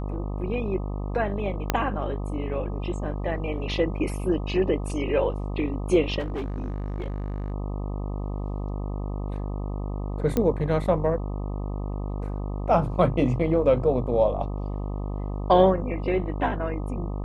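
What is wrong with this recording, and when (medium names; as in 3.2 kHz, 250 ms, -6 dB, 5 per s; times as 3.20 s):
buzz 50 Hz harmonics 25 -30 dBFS
1.70 s: pop -6 dBFS
6.19–7.52 s: clipped -26 dBFS
10.37 s: pop -11 dBFS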